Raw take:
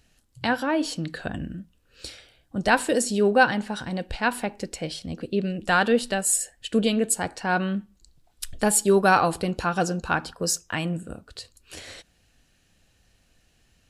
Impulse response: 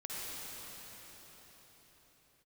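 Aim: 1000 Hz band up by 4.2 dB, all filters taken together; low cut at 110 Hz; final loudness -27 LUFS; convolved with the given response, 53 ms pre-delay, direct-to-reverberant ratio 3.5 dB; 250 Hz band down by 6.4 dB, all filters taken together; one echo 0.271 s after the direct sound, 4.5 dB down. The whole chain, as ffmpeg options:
-filter_complex "[0:a]highpass=110,equalizer=f=250:t=o:g=-9,equalizer=f=1k:t=o:g=6.5,aecho=1:1:271:0.596,asplit=2[a][b];[1:a]atrim=start_sample=2205,adelay=53[c];[b][c]afir=irnorm=-1:irlink=0,volume=-6dB[d];[a][d]amix=inputs=2:normalize=0,volume=-6dB"

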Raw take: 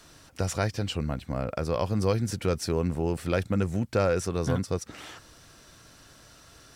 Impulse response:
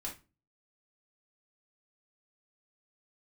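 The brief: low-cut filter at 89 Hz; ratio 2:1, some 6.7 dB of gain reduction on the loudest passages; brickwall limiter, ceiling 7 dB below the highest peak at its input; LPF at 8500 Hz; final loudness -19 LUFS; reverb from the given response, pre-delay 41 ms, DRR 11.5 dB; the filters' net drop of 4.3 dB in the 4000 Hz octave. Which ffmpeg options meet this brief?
-filter_complex "[0:a]highpass=89,lowpass=8.5k,equalizer=f=4k:t=o:g=-6,acompressor=threshold=-33dB:ratio=2,alimiter=limit=-24dB:level=0:latency=1,asplit=2[a][b];[1:a]atrim=start_sample=2205,adelay=41[c];[b][c]afir=irnorm=-1:irlink=0,volume=-11dB[d];[a][d]amix=inputs=2:normalize=0,volume=17.5dB"

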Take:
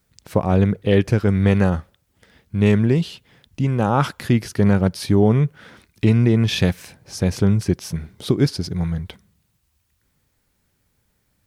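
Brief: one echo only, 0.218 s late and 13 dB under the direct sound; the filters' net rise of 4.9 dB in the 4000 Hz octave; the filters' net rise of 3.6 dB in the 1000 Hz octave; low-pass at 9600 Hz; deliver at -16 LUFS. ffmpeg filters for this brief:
-af "lowpass=9.6k,equalizer=f=1k:t=o:g=4.5,equalizer=f=4k:t=o:g=6,aecho=1:1:218:0.224,volume=3dB"

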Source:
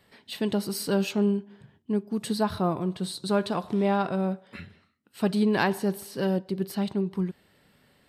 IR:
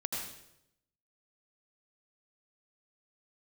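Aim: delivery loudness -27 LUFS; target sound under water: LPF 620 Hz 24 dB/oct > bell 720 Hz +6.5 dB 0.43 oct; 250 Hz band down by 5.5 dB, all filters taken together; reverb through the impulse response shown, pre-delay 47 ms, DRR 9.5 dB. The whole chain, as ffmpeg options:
-filter_complex "[0:a]equalizer=f=250:t=o:g=-8,asplit=2[a][b];[1:a]atrim=start_sample=2205,adelay=47[c];[b][c]afir=irnorm=-1:irlink=0,volume=-12.5dB[d];[a][d]amix=inputs=2:normalize=0,lowpass=f=620:w=0.5412,lowpass=f=620:w=1.3066,equalizer=f=720:t=o:w=0.43:g=6.5,volume=5dB"

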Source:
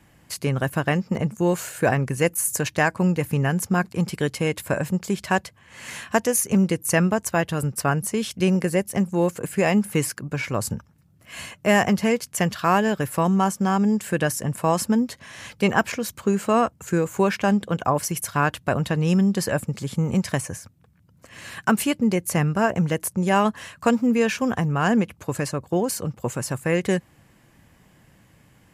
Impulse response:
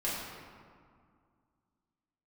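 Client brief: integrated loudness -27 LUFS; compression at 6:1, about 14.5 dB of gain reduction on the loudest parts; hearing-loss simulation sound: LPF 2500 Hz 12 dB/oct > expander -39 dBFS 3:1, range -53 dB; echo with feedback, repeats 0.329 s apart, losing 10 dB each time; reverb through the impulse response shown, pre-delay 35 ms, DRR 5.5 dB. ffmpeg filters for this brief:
-filter_complex "[0:a]acompressor=threshold=-31dB:ratio=6,aecho=1:1:329|658|987|1316:0.316|0.101|0.0324|0.0104,asplit=2[a][b];[1:a]atrim=start_sample=2205,adelay=35[c];[b][c]afir=irnorm=-1:irlink=0,volume=-12dB[d];[a][d]amix=inputs=2:normalize=0,lowpass=2.5k,agate=range=-53dB:threshold=-39dB:ratio=3,volume=7dB"

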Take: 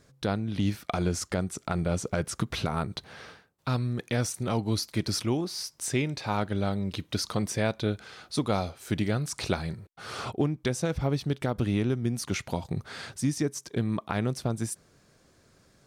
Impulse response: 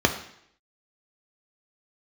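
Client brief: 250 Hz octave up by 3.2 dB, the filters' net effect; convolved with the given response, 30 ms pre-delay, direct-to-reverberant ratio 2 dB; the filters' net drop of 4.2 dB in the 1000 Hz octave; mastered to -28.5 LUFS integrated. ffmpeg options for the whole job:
-filter_complex "[0:a]equalizer=f=250:t=o:g=4.5,equalizer=f=1k:t=o:g=-6.5,asplit=2[a][b];[1:a]atrim=start_sample=2205,adelay=30[c];[b][c]afir=irnorm=-1:irlink=0,volume=-18dB[d];[a][d]amix=inputs=2:normalize=0,volume=-4.5dB"

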